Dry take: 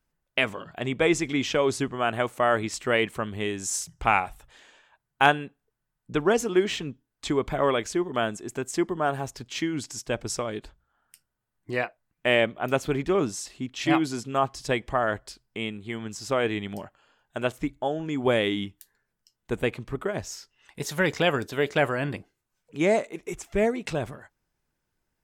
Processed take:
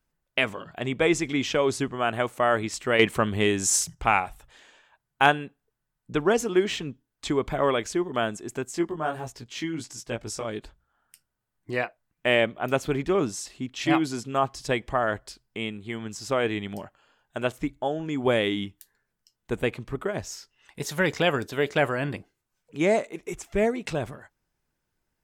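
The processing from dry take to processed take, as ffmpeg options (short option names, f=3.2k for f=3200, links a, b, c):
-filter_complex "[0:a]asettb=1/sr,asplit=3[a][b][c];[a]atrim=end=2.994[d];[b]atrim=start=2.99:end=3.95,asetpts=PTS-STARTPTS,afade=t=in:d=0.004:c=qsin,afade=t=out:st=0.956:d=0.004:c=qsin,acontrast=70[e];[c]atrim=start=3.946[f];[d][e]acrossfade=d=0.004:c1=hsin:c2=qsin[g];[g][f]acrossfade=d=0.004:c1=qsin:c2=hsin,asettb=1/sr,asplit=3[h][i][j];[h]atrim=end=8.654[k];[i]atrim=start=8.65:end=10.45,asetpts=PTS-STARTPTS,afade=t=in:d=0.004:c=qsin,afade=t=out:st=1.796:d=0.004:c=qsin,flanger=delay=16:depth=3.2:speed=1.5[l];[j]atrim=start=10.446[m];[k][l]acrossfade=d=0.004:c1=hsin:c2=qsin[n];[n][m]acrossfade=d=0.004:c1=qsin:c2=hsin"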